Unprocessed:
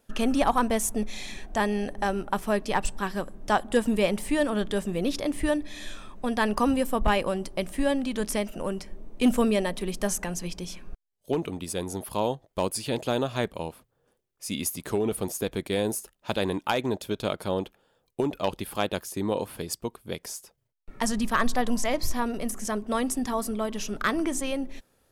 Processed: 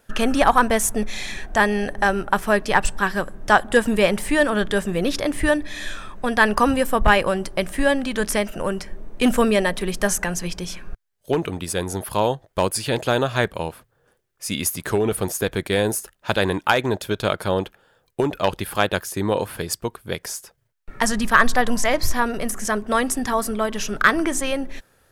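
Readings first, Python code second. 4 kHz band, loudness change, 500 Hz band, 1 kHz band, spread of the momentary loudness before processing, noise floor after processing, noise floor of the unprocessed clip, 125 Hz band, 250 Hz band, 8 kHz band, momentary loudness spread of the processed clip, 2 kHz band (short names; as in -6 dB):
+7.0 dB, +7.0 dB, +6.5 dB, +8.0 dB, 10 LU, -65 dBFS, -72 dBFS, +7.0 dB, +4.0 dB, +6.5 dB, 11 LU, +12.0 dB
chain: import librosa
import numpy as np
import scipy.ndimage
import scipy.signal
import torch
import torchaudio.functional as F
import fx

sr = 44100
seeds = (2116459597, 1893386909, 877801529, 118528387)

y = fx.graphic_eq_15(x, sr, hz=(100, 250, 1600), db=(3, -4, 7))
y = y * librosa.db_to_amplitude(6.5)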